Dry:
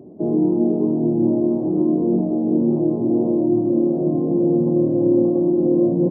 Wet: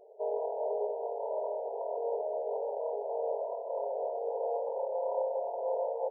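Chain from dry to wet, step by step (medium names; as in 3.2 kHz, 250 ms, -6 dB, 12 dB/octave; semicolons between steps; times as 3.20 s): valve stage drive 12 dB, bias 0.4; brick-wall FIR band-pass 410–1000 Hz; trim -1.5 dB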